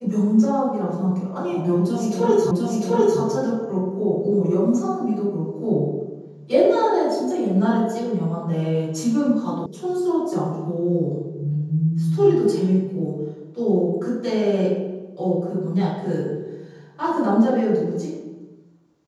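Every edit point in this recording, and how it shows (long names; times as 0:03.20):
0:02.51: the same again, the last 0.7 s
0:09.66: cut off before it has died away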